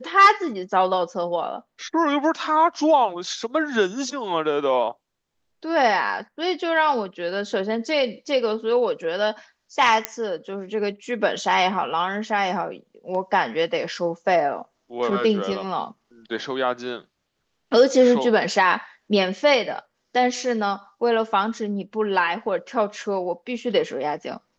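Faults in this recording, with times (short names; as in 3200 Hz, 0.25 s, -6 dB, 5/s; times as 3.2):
10.05 pop -4 dBFS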